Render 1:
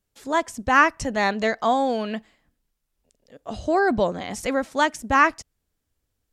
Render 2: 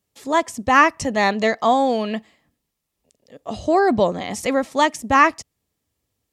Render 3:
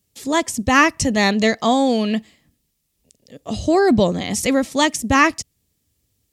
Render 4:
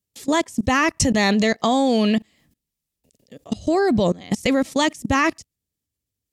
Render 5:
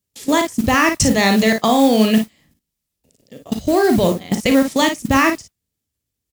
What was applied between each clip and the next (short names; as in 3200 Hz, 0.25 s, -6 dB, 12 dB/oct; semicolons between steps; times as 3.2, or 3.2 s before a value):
HPF 81 Hz 12 dB/oct; notch 1500 Hz, Q 5.9; gain +4 dB
bell 930 Hz -12 dB 2.6 oct; gain +9 dB
level quantiser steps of 22 dB; gain +4.5 dB
early reflections 37 ms -9.5 dB, 55 ms -8 dB; modulation noise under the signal 20 dB; gain +3 dB